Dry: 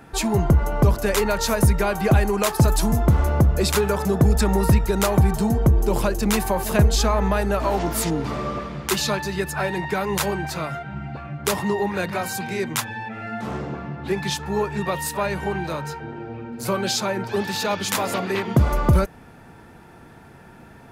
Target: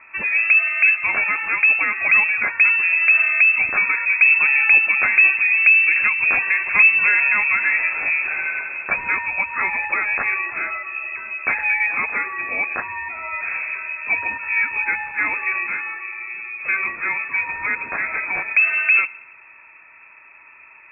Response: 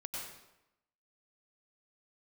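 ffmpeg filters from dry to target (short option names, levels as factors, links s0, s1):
-filter_complex "[0:a]dynaudnorm=f=250:g=31:m=1.41,asplit=2[s0][s1];[1:a]atrim=start_sample=2205[s2];[s1][s2]afir=irnorm=-1:irlink=0,volume=0.1[s3];[s0][s3]amix=inputs=2:normalize=0,lowpass=f=2300:t=q:w=0.5098,lowpass=f=2300:t=q:w=0.6013,lowpass=f=2300:t=q:w=0.9,lowpass=f=2300:t=q:w=2.563,afreqshift=-2700"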